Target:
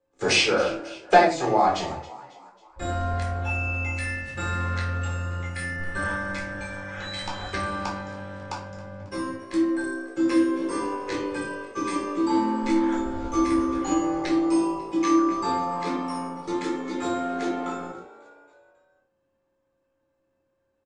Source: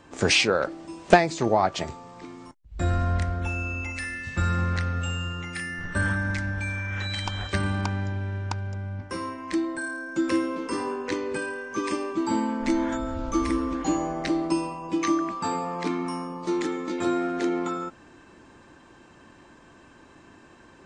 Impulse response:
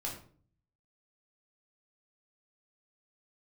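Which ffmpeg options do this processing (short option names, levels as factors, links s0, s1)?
-filter_complex "[0:a]aeval=exprs='val(0)+0.00794*sin(2*PI*540*n/s)':c=same,agate=range=0.0355:threshold=0.02:ratio=16:detection=peak,acrossover=split=280|740|2100[s0][s1][s2][s3];[s0]acompressor=threshold=0.0112:ratio=6[s4];[s4][s1][s2][s3]amix=inputs=4:normalize=0,asplit=5[s5][s6][s7][s8][s9];[s6]adelay=272,afreqshift=56,volume=0.119[s10];[s7]adelay=544,afreqshift=112,volume=0.0617[s11];[s8]adelay=816,afreqshift=168,volume=0.032[s12];[s9]adelay=1088,afreqshift=224,volume=0.0168[s13];[s5][s10][s11][s12][s13]amix=inputs=5:normalize=0[s14];[1:a]atrim=start_sample=2205,afade=t=out:st=0.23:d=0.01,atrim=end_sample=10584[s15];[s14][s15]afir=irnorm=-1:irlink=0"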